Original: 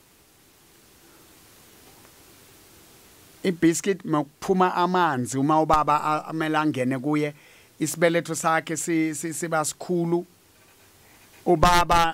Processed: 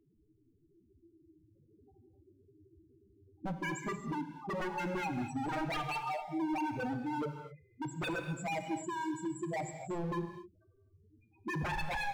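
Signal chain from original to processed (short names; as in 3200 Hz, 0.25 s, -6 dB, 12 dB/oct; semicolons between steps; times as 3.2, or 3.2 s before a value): half-waves squared off; loudest bins only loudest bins 2; wavefolder -24 dBFS; non-linear reverb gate 0.28 s flat, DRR 6.5 dB; gain -7.5 dB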